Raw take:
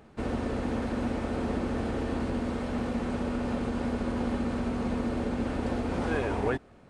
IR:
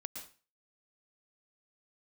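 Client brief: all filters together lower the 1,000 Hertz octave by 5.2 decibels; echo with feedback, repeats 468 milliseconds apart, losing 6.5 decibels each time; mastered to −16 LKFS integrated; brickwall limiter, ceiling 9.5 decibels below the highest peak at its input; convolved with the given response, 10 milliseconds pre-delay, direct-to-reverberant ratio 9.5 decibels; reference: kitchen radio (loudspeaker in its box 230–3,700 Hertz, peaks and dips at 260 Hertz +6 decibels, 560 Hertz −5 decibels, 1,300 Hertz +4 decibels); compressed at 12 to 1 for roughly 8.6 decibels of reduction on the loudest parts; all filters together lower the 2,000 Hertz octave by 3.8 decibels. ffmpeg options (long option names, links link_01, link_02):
-filter_complex "[0:a]equalizer=frequency=1000:width_type=o:gain=-7,equalizer=frequency=2000:width_type=o:gain=-3.5,acompressor=threshold=-35dB:ratio=12,alimiter=level_in=13dB:limit=-24dB:level=0:latency=1,volume=-13dB,aecho=1:1:468|936|1404|1872|2340|2808:0.473|0.222|0.105|0.0491|0.0231|0.0109,asplit=2[link_01][link_02];[1:a]atrim=start_sample=2205,adelay=10[link_03];[link_02][link_03]afir=irnorm=-1:irlink=0,volume=-7dB[link_04];[link_01][link_04]amix=inputs=2:normalize=0,highpass=230,equalizer=frequency=260:width_type=q:width=4:gain=6,equalizer=frequency=560:width_type=q:width=4:gain=-5,equalizer=frequency=1300:width_type=q:width=4:gain=4,lowpass=frequency=3700:width=0.5412,lowpass=frequency=3700:width=1.3066,volume=29.5dB"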